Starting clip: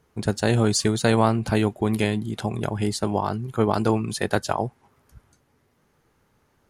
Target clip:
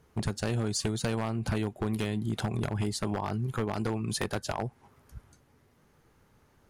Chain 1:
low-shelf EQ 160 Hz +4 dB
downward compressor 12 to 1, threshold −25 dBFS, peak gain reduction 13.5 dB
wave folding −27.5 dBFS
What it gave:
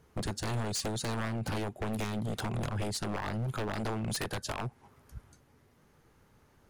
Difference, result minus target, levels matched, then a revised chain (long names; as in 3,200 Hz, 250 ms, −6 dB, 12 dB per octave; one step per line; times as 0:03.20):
wave folding: distortion +12 dB
low-shelf EQ 160 Hz +4 dB
downward compressor 12 to 1, threshold −25 dBFS, peak gain reduction 13.5 dB
wave folding −21 dBFS